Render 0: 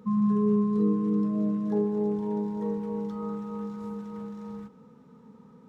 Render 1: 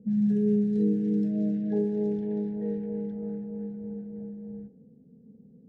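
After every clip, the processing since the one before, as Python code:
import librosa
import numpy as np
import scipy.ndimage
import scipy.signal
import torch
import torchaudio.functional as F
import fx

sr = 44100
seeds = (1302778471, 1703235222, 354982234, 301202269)

y = scipy.signal.sosfilt(scipy.signal.cheby1(3, 1.0, [760.0, 1600.0], 'bandstop', fs=sr, output='sos'), x)
y = fx.env_lowpass(y, sr, base_hz=320.0, full_db=-21.5)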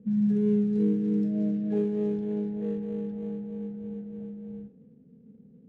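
y = scipy.signal.medfilt(x, 25)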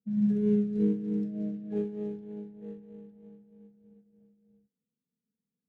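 y = fx.upward_expand(x, sr, threshold_db=-46.0, expansion=2.5)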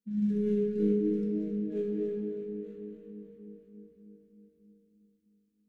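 y = fx.fixed_phaser(x, sr, hz=310.0, stages=4)
y = fx.room_shoebox(y, sr, seeds[0], volume_m3=160.0, walls='hard', distance_m=0.49)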